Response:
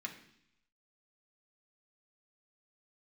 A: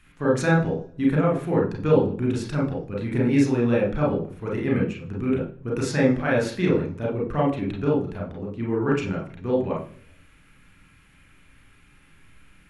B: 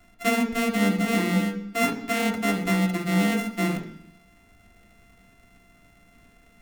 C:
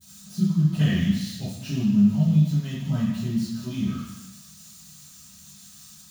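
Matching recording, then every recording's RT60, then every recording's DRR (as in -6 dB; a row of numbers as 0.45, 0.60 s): B; 0.50 s, 0.70 s, not exponential; -2.5, 0.0, -15.0 dB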